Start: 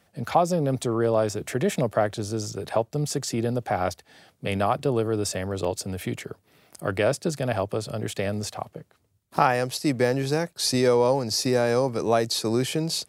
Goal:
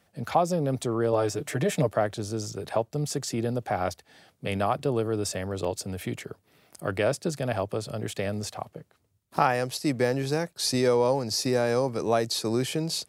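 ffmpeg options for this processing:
ffmpeg -i in.wav -filter_complex "[0:a]asettb=1/sr,asplit=3[link_01][link_02][link_03];[link_01]atrim=end=1.124[link_04];[link_02]atrim=start=1.12:end=1.89,asetpts=PTS-STARTPTS,afade=type=in:duration=0.004:curve=qsin,afade=type=out:start_time=0.766:duration=0.004:curve=qsin,aecho=1:1:6.7:0.68,atrim=end_sample=33957[link_05];[link_03]atrim=start=1.886[link_06];[link_04][link_05]acrossfade=duration=0.004:curve1=hsin:curve2=qsin[link_07];[link_07][link_06]acrossfade=duration=0.004:curve1=qsin:curve2=hsin,volume=-2.5dB" out.wav

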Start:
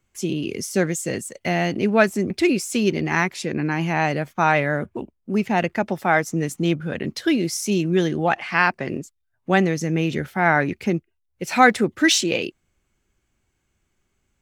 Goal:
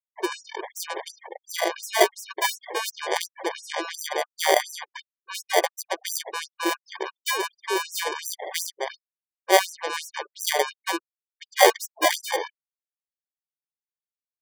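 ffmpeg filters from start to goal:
ffmpeg -i in.wav -af "acrusher=samples=33:mix=1:aa=0.000001,afftfilt=real='re*gte(hypot(re,im),0.0224)':imag='im*gte(hypot(re,im),0.0224)':win_size=1024:overlap=0.75,afftfilt=real='re*gte(b*sr/1024,320*pow(5400/320,0.5+0.5*sin(2*PI*2.8*pts/sr)))':imag='im*gte(b*sr/1024,320*pow(5400/320,0.5+0.5*sin(2*PI*2.8*pts/sr)))':win_size=1024:overlap=0.75,volume=1.5dB" out.wav

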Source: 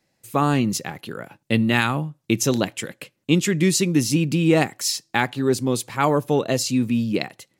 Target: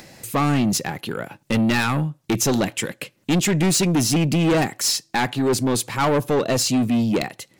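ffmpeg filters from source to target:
ffmpeg -i in.wav -af "asoftclip=type=tanh:threshold=-21dB,acompressor=mode=upward:threshold=-35dB:ratio=2.5,volume=6dB" out.wav

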